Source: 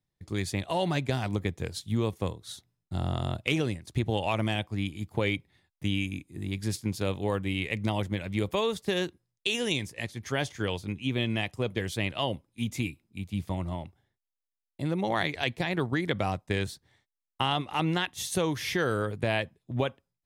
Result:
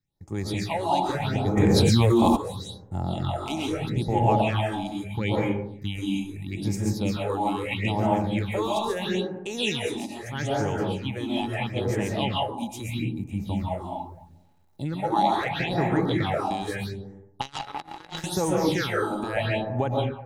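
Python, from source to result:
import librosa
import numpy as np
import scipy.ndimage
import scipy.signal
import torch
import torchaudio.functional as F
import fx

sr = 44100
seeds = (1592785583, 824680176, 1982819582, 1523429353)

y = fx.rev_freeverb(x, sr, rt60_s=0.87, hf_ratio=0.4, predelay_ms=95, drr_db=-4.0)
y = fx.phaser_stages(y, sr, stages=6, low_hz=120.0, high_hz=4000.0, hz=0.77, feedback_pct=25)
y = fx.quant_dither(y, sr, seeds[0], bits=12, dither='none', at=(13.62, 14.88))
y = fx.power_curve(y, sr, exponent=3.0, at=(17.41, 18.24))
y = fx.small_body(y, sr, hz=(840.0, 3900.0), ring_ms=65, db=14)
y = fx.env_flatten(y, sr, amount_pct=100, at=(1.56, 2.35), fade=0.02)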